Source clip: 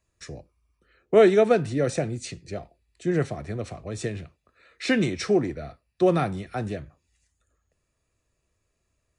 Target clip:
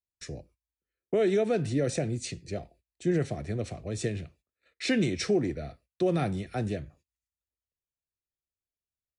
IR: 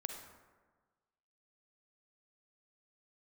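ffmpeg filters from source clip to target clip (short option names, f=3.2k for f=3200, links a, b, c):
-af "equalizer=f=1.1k:w=1.4:g=-8.5,alimiter=limit=-17.5dB:level=0:latency=1:release=108,agate=range=-27dB:threshold=-57dB:ratio=16:detection=peak"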